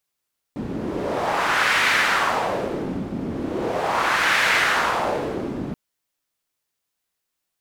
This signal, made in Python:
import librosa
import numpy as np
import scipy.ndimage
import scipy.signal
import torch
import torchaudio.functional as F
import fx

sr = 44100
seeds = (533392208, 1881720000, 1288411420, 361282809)

y = fx.wind(sr, seeds[0], length_s=5.18, low_hz=230.0, high_hz=1900.0, q=1.8, gusts=2, swing_db=10)